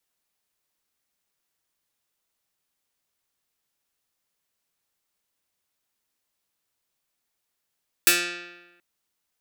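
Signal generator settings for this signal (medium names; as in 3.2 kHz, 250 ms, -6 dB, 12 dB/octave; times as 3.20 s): plucked string F3, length 0.73 s, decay 1.15 s, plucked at 0.17, medium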